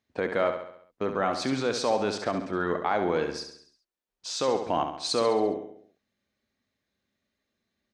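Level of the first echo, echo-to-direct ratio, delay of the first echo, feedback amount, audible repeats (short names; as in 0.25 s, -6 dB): -8.0 dB, -6.5 dB, 68 ms, 51%, 5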